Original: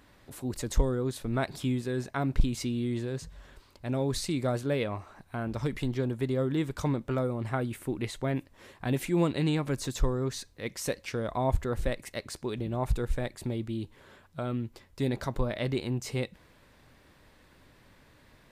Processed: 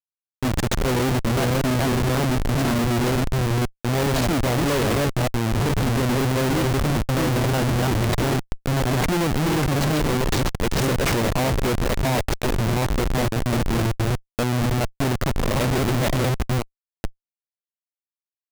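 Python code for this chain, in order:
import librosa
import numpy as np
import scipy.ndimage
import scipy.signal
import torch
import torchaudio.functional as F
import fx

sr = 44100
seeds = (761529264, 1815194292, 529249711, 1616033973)

y = fx.reverse_delay(x, sr, ms=406, wet_db=-2.0)
y = fx.schmitt(y, sr, flips_db=-32.5)
y = y * librosa.db_to_amplitude(9.0)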